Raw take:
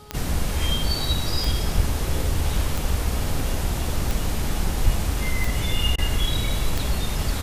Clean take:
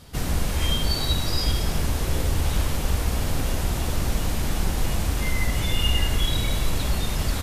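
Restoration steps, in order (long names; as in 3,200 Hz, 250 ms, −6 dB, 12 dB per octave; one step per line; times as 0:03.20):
click removal
hum removal 419.7 Hz, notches 3
0:01.76–0:01.88: high-pass filter 140 Hz 24 dB per octave
0:04.84–0:04.96: high-pass filter 140 Hz 24 dB per octave
repair the gap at 0:05.96, 21 ms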